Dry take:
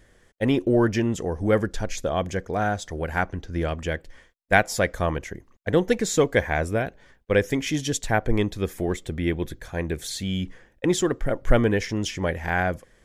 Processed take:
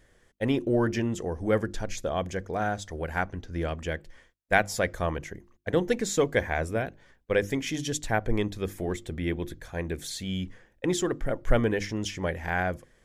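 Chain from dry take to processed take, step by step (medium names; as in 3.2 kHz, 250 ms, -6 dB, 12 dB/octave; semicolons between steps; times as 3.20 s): hum notches 50/100/150/200/250/300/350 Hz; trim -4 dB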